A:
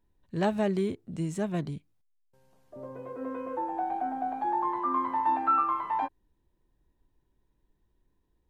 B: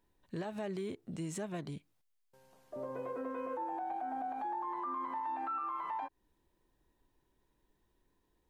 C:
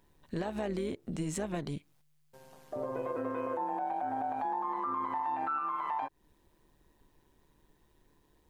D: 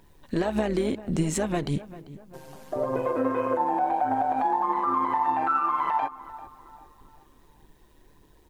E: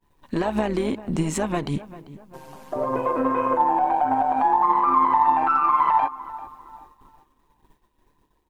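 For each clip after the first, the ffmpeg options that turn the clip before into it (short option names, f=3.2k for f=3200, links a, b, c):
-af "acompressor=threshold=-37dB:ratio=2,lowshelf=f=230:g=-10.5,alimiter=level_in=11.5dB:limit=-24dB:level=0:latency=1:release=98,volume=-11.5dB,volume=4dB"
-filter_complex "[0:a]asplit=2[a][b];[b]acompressor=threshold=-48dB:ratio=6,volume=1dB[c];[a][c]amix=inputs=2:normalize=0,tremolo=f=150:d=0.571,volume=4.5dB"
-filter_complex "[0:a]aphaser=in_gain=1:out_gain=1:delay=4.2:decay=0.32:speed=1.7:type=triangular,asplit=2[a][b];[b]adelay=393,lowpass=f=2k:p=1,volume=-16dB,asplit=2[c][d];[d]adelay=393,lowpass=f=2k:p=1,volume=0.44,asplit=2[e][f];[f]adelay=393,lowpass=f=2k:p=1,volume=0.44,asplit=2[g][h];[h]adelay=393,lowpass=f=2k:p=1,volume=0.44[i];[a][c][e][g][i]amix=inputs=5:normalize=0,volume=8.5dB"
-af "agate=range=-33dB:threshold=-47dB:ratio=3:detection=peak,aeval=exprs='0.224*(cos(1*acos(clip(val(0)/0.224,-1,1)))-cos(1*PI/2))+0.00708*(cos(4*acos(clip(val(0)/0.224,-1,1)))-cos(4*PI/2))':c=same,equalizer=f=250:t=o:w=0.67:g=3,equalizer=f=1k:t=o:w=0.67:g=8,equalizer=f=2.5k:t=o:w=0.67:g=3"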